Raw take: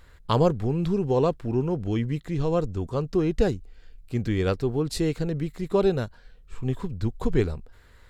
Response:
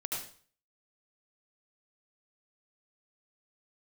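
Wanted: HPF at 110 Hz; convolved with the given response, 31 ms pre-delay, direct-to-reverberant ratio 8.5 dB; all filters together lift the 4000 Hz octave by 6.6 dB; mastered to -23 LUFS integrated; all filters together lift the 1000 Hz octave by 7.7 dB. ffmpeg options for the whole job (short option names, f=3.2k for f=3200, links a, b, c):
-filter_complex "[0:a]highpass=110,equalizer=f=1k:t=o:g=9,equalizer=f=4k:t=o:g=7.5,asplit=2[a][b];[1:a]atrim=start_sample=2205,adelay=31[c];[b][c]afir=irnorm=-1:irlink=0,volume=-11dB[d];[a][d]amix=inputs=2:normalize=0,volume=1.5dB"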